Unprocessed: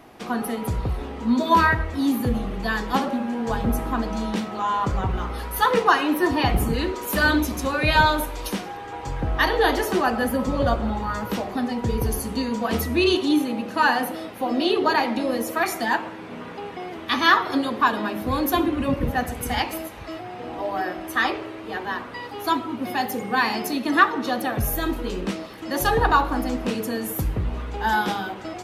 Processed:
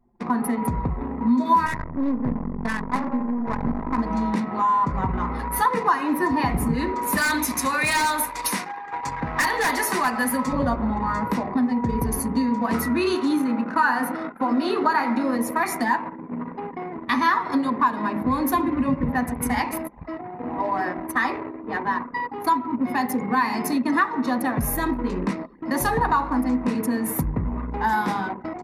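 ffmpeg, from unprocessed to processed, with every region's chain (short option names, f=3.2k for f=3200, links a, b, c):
-filter_complex "[0:a]asettb=1/sr,asplit=3[a][b][c];[a]atrim=end=1.664[d];[b]atrim=start=1.66:end=3.98,asetpts=PTS-STARTPTS,afade=t=in:d=0.004:c=qsin,afade=t=out:st=2.316:d=0.004:c=qsin,aeval=exprs='max(val(0),0)':c=same,adynamicsmooth=sensitivity=5.5:basefreq=940[e];[c]atrim=start=3.976[f];[d][e]acrossfade=d=0.004:c1=hsin:c2=qsin[g];[g][f]acrossfade=d=0.004:c1=qsin:c2=hsin,asettb=1/sr,asplit=3[h][i][j];[h]atrim=end=7.174[k];[i]atrim=start=7.17:end=10.53,asetpts=PTS-STARTPTS,afade=t=in:d=0.004:c=qsin,afade=t=out:st=3.356:d=0.004:c=qsin,highpass=64,tiltshelf=f=880:g=-7.5,aeval=exprs='0.211*(abs(mod(val(0)/0.211+3,4)-2)-1)':c=same[l];[j]atrim=start=10.526[m];[k][l]acrossfade=d=0.004:c1=hsin:c2=qsin[n];[n][m]acrossfade=d=0.004:c1=qsin:c2=hsin,asettb=1/sr,asplit=3[o][p][q];[o]atrim=end=12.744[r];[p]atrim=start=12.74:end=15.36,asetpts=PTS-STARTPTS,afade=t=in:d=0.004:c=qsin,afade=t=out:st=2.616:d=0.004:c=qsin,highpass=f=130:p=1,equalizer=f=1.4k:t=o:w=0.32:g=12,asplit=2[s][t];[t]adelay=22,volume=-12dB[u];[s][u]amix=inputs=2:normalize=0,atrim=end_sample=115542[v];[q]atrim=start=15.356[w];[r][v]acrossfade=d=0.004:c1=hsin:c2=qsin[x];[x][w]acrossfade=d=0.004:c1=qsin:c2=hsin,anlmdn=10,equalizer=f=160:t=o:w=0.33:g=10,equalizer=f=250:t=o:w=0.33:g=11,equalizer=f=1k:t=o:w=0.33:g=12,equalizer=f=2k:t=o:w=0.33:g=8,equalizer=f=3.15k:t=o:w=0.33:g=-10,equalizer=f=10k:t=o:w=0.33:g=7,acompressor=threshold=-21dB:ratio=2.5"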